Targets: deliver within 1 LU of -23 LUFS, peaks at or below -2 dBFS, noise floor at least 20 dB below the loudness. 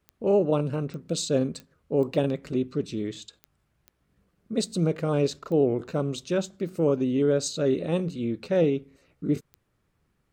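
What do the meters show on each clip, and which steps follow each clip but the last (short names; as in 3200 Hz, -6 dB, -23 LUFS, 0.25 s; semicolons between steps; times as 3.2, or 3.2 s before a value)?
clicks 8; loudness -27.0 LUFS; peak -10.5 dBFS; loudness target -23.0 LUFS
-> de-click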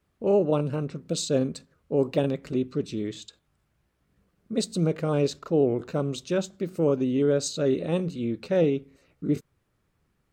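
clicks 0; loudness -27.0 LUFS; peak -10.5 dBFS; loudness target -23.0 LUFS
-> gain +4 dB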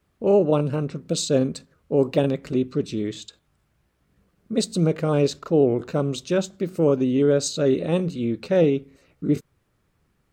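loudness -23.0 LUFS; peak -6.5 dBFS; noise floor -69 dBFS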